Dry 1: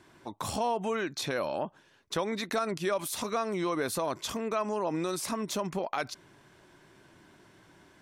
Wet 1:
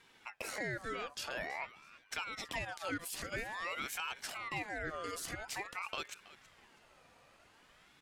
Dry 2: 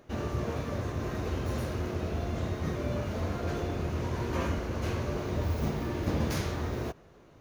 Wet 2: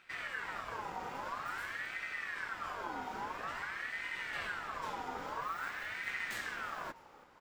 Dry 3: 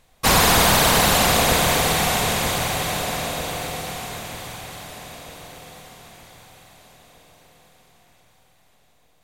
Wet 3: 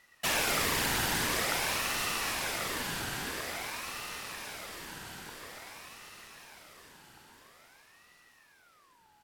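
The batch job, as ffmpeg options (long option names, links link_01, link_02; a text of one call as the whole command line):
ffmpeg -i in.wav -filter_complex "[0:a]equalizer=frequency=210:width=2.3:gain=-14,acompressor=threshold=-39dB:ratio=1.5,asplit=4[link_01][link_02][link_03][link_04];[link_02]adelay=325,afreqshift=-81,volume=-18dB[link_05];[link_03]adelay=650,afreqshift=-162,volume=-28.2dB[link_06];[link_04]adelay=975,afreqshift=-243,volume=-38.3dB[link_07];[link_01][link_05][link_06][link_07]amix=inputs=4:normalize=0,aeval=exprs='val(0)*sin(2*PI*1400*n/s+1400*0.4/0.49*sin(2*PI*0.49*n/s))':channel_layout=same,volume=-1.5dB" out.wav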